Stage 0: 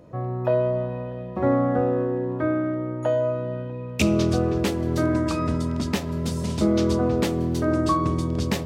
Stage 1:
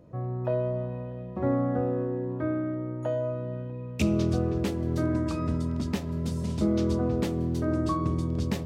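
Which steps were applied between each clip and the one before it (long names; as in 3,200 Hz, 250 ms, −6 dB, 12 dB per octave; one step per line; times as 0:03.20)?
low-shelf EQ 370 Hz +7 dB
level −9 dB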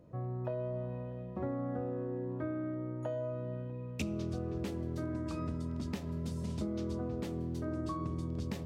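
downward compressor, threshold −28 dBFS, peak gain reduction 8.5 dB
level −5 dB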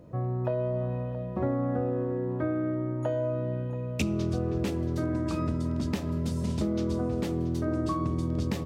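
single-tap delay 678 ms −15.5 dB
level +8 dB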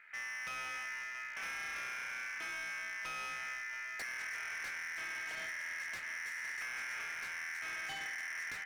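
ring modulation 1,900 Hz
gain into a clipping stage and back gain 33 dB
level −5.5 dB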